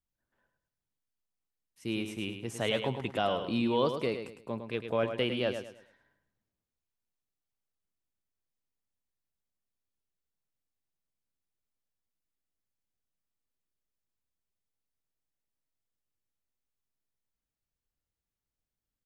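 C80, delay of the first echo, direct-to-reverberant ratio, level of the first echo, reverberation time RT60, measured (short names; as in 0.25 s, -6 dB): none, 0.106 s, none, -8.0 dB, none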